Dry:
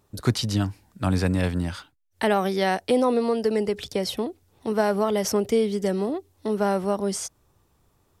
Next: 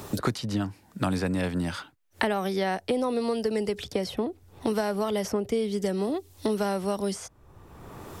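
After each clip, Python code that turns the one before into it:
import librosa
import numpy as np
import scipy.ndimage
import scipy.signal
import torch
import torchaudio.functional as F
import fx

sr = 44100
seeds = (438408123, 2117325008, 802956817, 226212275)

y = fx.band_squash(x, sr, depth_pct=100)
y = y * 10.0 ** (-4.5 / 20.0)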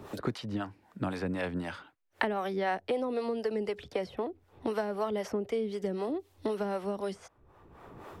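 y = fx.bass_treble(x, sr, bass_db=-6, treble_db=-13)
y = fx.harmonic_tremolo(y, sr, hz=3.9, depth_pct=70, crossover_hz=420.0)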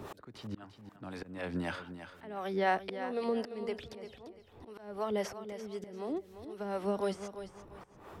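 y = fx.auto_swell(x, sr, attack_ms=475.0)
y = fx.echo_feedback(y, sr, ms=344, feedback_pct=28, wet_db=-11)
y = y * 10.0 ** (2.0 / 20.0)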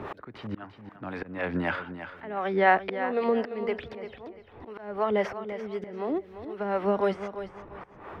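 y = fx.curve_eq(x, sr, hz=(140.0, 2100.0, 7800.0), db=(0, 6, -18))
y = y * 10.0 ** (5.0 / 20.0)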